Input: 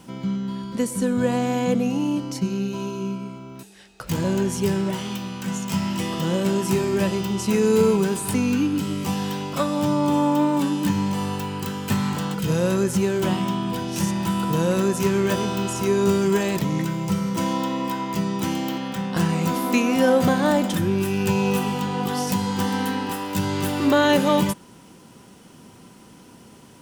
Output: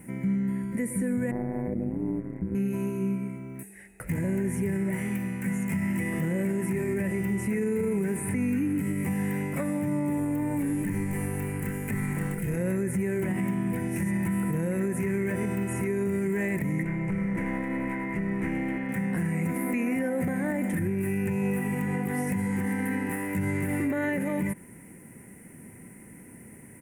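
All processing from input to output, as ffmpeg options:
-filter_complex "[0:a]asettb=1/sr,asplit=3[s0][s1][s2];[s0]atrim=end=1.314[s3];[s1]atrim=start=1.31:end=2.55,asetpts=PTS-STARTPTS,afade=t=in:d=0.004:c=qsin,afade=t=out:st=1.236:d=0.004:c=qsin,lowpass=f=1400:w=0.5412,lowpass=f=1400:w=1.3066,aeval=exprs='sgn(val(0))*max(abs(val(0))-0.00316,0)':c=same,tremolo=f=110:d=0.889[s4];[s2]atrim=start=2.546[s5];[s3][s4]acrossfade=d=0.004:c1=hsin:c2=qsin[s6];[s6][s5]acrossfade=d=0.004:c1=qsin:c2=hsin,asettb=1/sr,asplit=3[s7][s8][s9];[s7]atrim=end=10.174[s10];[s8]atrim=start=10.17:end=12.57,asetpts=PTS-STARTPTS,afade=t=in:d=0.004:c=qsin,afade=t=out:st=2.396:d=0.004:c=qsin,highshelf=f=5000:g=5,tremolo=f=190:d=0.462,asplit=2[s11][s12];[s12]adelay=28,volume=0.398[s13];[s11][s13]amix=inputs=2:normalize=0,atrim=end_sample=105840[s14];[s9]atrim=start=12.566[s15];[s10][s14]acrossfade=d=0.004:c1=hsin:c2=qsin[s16];[s16][s15]acrossfade=d=0.004:c1=qsin:c2=hsin,asettb=1/sr,asplit=3[s17][s18][s19];[s17]atrim=end=16.834[s20];[s18]atrim=start=16.83:end=18.89,asetpts=PTS-STARTPTS,afade=t=in:d=0.004:c=qsin,afade=t=out:st=2.056:d=0.004:c=qsin,lowpass=3200,equalizer=f=110:t=o:w=2.3:g=-3.5,aeval=exprs='clip(val(0),-1,0.0501)':c=same[s21];[s19]atrim=start=18.886[s22];[s20][s21]acrossfade=d=0.004:c1=hsin:c2=qsin[s23];[s23][s22]acrossfade=d=0.004:c1=qsin:c2=hsin,acrossover=split=5600[s24][s25];[s25]acompressor=threshold=0.00794:ratio=4:attack=1:release=60[s26];[s24][s26]amix=inputs=2:normalize=0,firequalizer=gain_entry='entry(160,0);entry(1200,-14);entry(2000,8);entry(3200,-25);entry(4600,-26);entry(9500,7);entry(16000,0)':delay=0.05:min_phase=1,alimiter=limit=0.0841:level=0:latency=1:release=71,volume=1.12"

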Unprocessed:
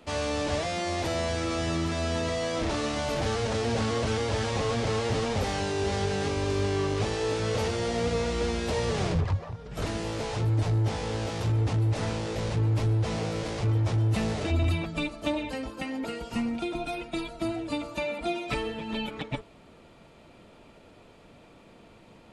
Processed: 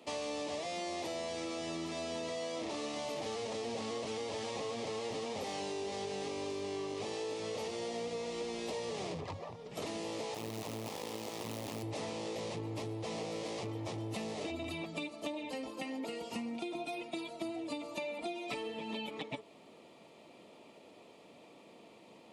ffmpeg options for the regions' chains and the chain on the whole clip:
-filter_complex "[0:a]asettb=1/sr,asplit=3[s0][s1][s2];[s0]atrim=end=10.344[s3];[s1]atrim=start=10.34:end=11.83,asetpts=PTS-STARTPTS,afade=t=in:d=0.004:c=qsin,afade=t=out:st=1.486:d=0.004:c=qsin,aeval=exprs='max(val(0),0)':c=same,acrusher=bits=3:mode=log:mix=0:aa=0.000001[s4];[s2]atrim=start=11.826[s5];[s3][s4]acrossfade=d=0.004:c1=hsin:c2=qsin[s6];[s6][s5]acrossfade=d=0.004:c1=qsin:c2=hsin,highpass=250,equalizer=f=1500:w=4:g=-14.5,acompressor=threshold=0.0178:ratio=6,volume=0.841"

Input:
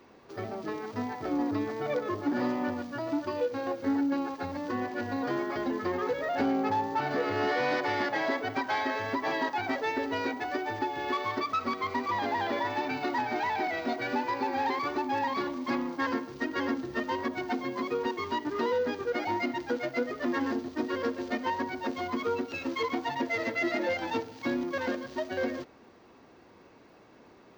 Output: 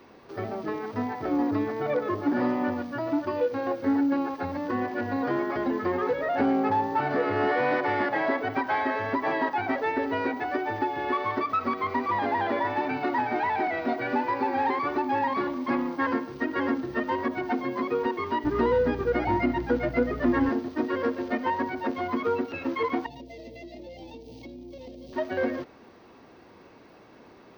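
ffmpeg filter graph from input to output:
-filter_complex "[0:a]asettb=1/sr,asplit=3[s0][s1][s2];[s0]atrim=end=18.444[s3];[s1]atrim=start=18.44:end=20.49,asetpts=PTS-STARTPTS,afade=t=in:d=0.004:c=qsin,afade=t=out:st=2.046:d=0.004:c=qsin,lowshelf=f=180:g=11,aeval=exprs='val(0)+0.00891*(sin(2*PI*60*n/s)+sin(2*PI*2*60*n/s)/2+sin(2*PI*3*60*n/s)/3+sin(2*PI*4*60*n/s)/4+sin(2*PI*5*60*n/s)/5)':c=same[s4];[s2]atrim=start=20.486[s5];[s3][s4]acrossfade=d=0.004:c1=hsin:c2=qsin[s6];[s6][s5]acrossfade=d=0.004:c1=qsin:c2=hsin,asettb=1/sr,asplit=3[s7][s8][s9];[s7]atrim=end=23.064[s10];[s8]atrim=start=23.06:end=25.13,asetpts=PTS-STARTPTS,afade=t=in:d=0.004:c=qsin,afade=t=out:st=2.066:d=0.004:c=qsin,asuperstop=centerf=1400:order=4:qfactor=0.59,acompressor=threshold=0.00708:ratio=16:attack=3.2:release=140:knee=1:detection=peak,aeval=exprs='val(0)+0.00158*(sin(2*PI*60*n/s)+sin(2*PI*2*60*n/s)/2+sin(2*PI*3*60*n/s)/3+sin(2*PI*4*60*n/s)/4+sin(2*PI*5*60*n/s)/5)':c=same[s11];[s9]atrim=start=25.126[s12];[s10][s11]acrossfade=d=0.004:c1=hsin:c2=qsin[s13];[s13][s12]acrossfade=d=0.004:c1=qsin:c2=hsin,acrossover=split=2600[s14][s15];[s15]acompressor=threshold=0.00141:ratio=4:attack=1:release=60[s16];[s14][s16]amix=inputs=2:normalize=0,equalizer=f=7200:w=6.6:g=-12.5,volume=1.58"

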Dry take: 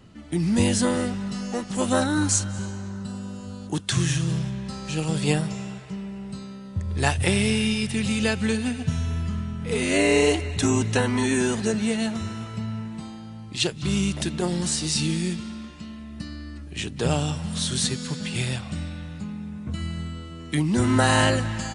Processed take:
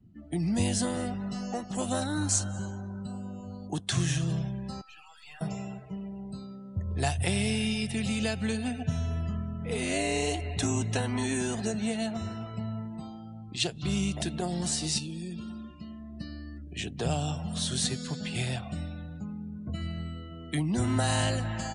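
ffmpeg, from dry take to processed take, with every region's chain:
-filter_complex "[0:a]asettb=1/sr,asplit=3[s0][s1][s2];[s0]atrim=end=4.814[s3];[s1]atrim=start=4.81:end=5.41,asetpts=PTS-STARTPTS,afade=t=in:d=0.004:c=qsin,afade=t=out:st=0.596:d=0.004:c=qsin,highpass=f=1000:w=0.5412,highpass=f=1000:w=1.3066,highshelf=f=3600:g=-6.5,aeval=exprs='(tanh(100*val(0)+0.75)-tanh(0.75))/100':c=same[s4];[s2]atrim=start=5.406[s5];[s3][s4]acrossfade=d=0.004:c1=hsin:c2=qsin[s6];[s6][s5]acrossfade=d=0.004:c1=qsin:c2=hsin,asettb=1/sr,asplit=3[s7][s8][s9];[s7]atrim=end=14.984[s10];[s8]atrim=start=14.98:end=15.66,asetpts=PTS-STARTPTS,afade=t=in:d=0.004:c=qsin,afade=t=out:st=0.676:d=0.004:c=qsin,bandreject=f=2100:w=6.2,acompressor=threshold=0.0398:ratio=16:attack=3.2:release=140:knee=1:detection=peak[s11];[s9]atrim=start=15.656[s12];[s10][s11]acrossfade=d=0.004:c1=hsin:c2=qsin[s13];[s13][s12]acrossfade=d=0.004:c1=qsin:c2=hsin,afftdn=nr=24:nf=-44,equalizer=f=700:w=5.2:g=11,acrossover=split=190|3000[s14][s15][s16];[s15]acompressor=threshold=0.0447:ratio=3[s17];[s14][s17][s16]amix=inputs=3:normalize=0,volume=0.596"

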